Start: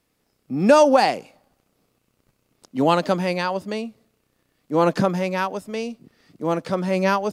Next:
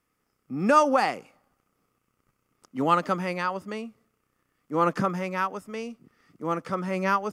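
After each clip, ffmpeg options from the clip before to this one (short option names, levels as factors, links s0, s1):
-af "equalizer=f=630:t=o:w=0.33:g=-4,equalizer=f=1250:t=o:w=0.33:g=11,equalizer=f=2000:t=o:w=0.33:g=4,equalizer=f=4000:t=o:w=0.33:g=-9,volume=0.473"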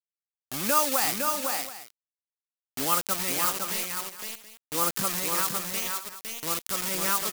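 -af "acrusher=bits=4:mix=0:aa=0.000001,aecho=1:1:509|577|726:0.596|0.158|0.15,crystalizer=i=5.5:c=0,volume=0.355"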